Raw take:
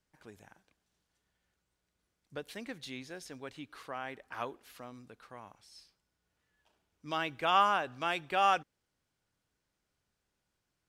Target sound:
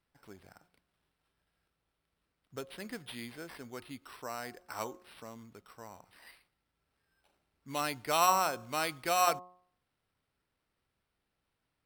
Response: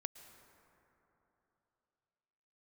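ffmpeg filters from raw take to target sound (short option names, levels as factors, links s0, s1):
-af "acrusher=samples=6:mix=1:aa=0.000001,asetrate=40517,aresample=44100,bandreject=f=180.1:t=h:w=4,bandreject=f=360.2:t=h:w=4,bandreject=f=540.3:t=h:w=4,bandreject=f=720.4:t=h:w=4,bandreject=f=900.5:t=h:w=4,bandreject=f=1080.6:t=h:w=4,bandreject=f=1260.7:t=h:w=4"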